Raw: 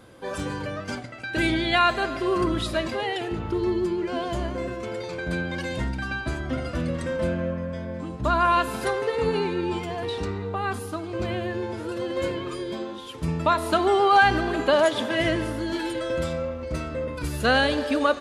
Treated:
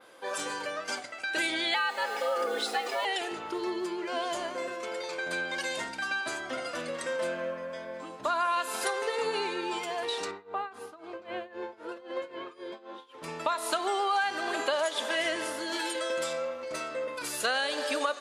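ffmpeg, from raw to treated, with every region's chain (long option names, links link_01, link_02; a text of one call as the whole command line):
ffmpeg -i in.wav -filter_complex "[0:a]asettb=1/sr,asplit=3[link_01][link_02][link_03];[link_01]atrim=end=1.744[link_04];[link_02]atrim=start=1.74:end=3.05,asetpts=PTS-STARTPTS,afade=type=in:duration=0.004:curve=qsin,afade=type=out:start_time=1.306:duration=0.004:curve=qsin,lowpass=frequency=3700:poles=1,afreqshift=160,acrusher=bits=7:mix=0:aa=0.5[link_05];[link_03]atrim=start=3.046[link_06];[link_04][link_05]acrossfade=duration=0.004:curve1=hsin:curve2=qsin[link_07];[link_07][link_06]acrossfade=duration=0.004:curve1=qsin:curve2=hsin,asettb=1/sr,asplit=3[link_08][link_09][link_10];[link_08]atrim=end=10.314[link_11];[link_09]atrim=start=10.31:end=13.24,asetpts=PTS-STARTPTS,afade=type=in:duration=0.004:curve=qsin,afade=type=out:start_time=2.926:duration=0.004:curve=qsin,lowpass=frequency=1700:poles=1,tremolo=f=3.8:d=0.88[link_12];[link_10]atrim=start=13.236[link_13];[link_11][link_12]acrossfade=duration=0.004:curve1=hsin:curve2=qsin[link_14];[link_14][link_13]acrossfade=duration=0.004:curve1=qsin:curve2=hsin,highpass=560,adynamicequalizer=threshold=0.00355:dfrequency=7800:dqfactor=0.76:tfrequency=7800:tqfactor=0.76:attack=5:release=100:ratio=0.375:range=4:mode=boostabove:tftype=bell,acompressor=threshold=-26dB:ratio=5" out.wav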